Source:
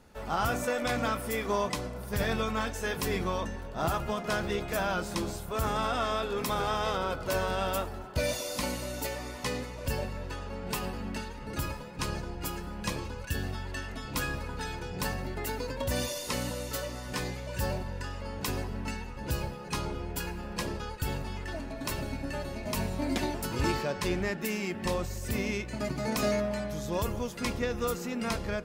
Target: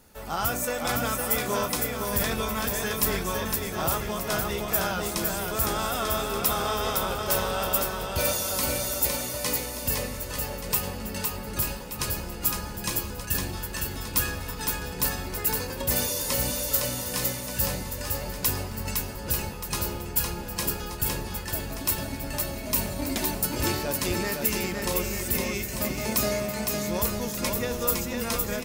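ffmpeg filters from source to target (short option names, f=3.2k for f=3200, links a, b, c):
-af "aemphasis=mode=production:type=50fm,aecho=1:1:510|892.5|1179|1395|1556:0.631|0.398|0.251|0.158|0.1"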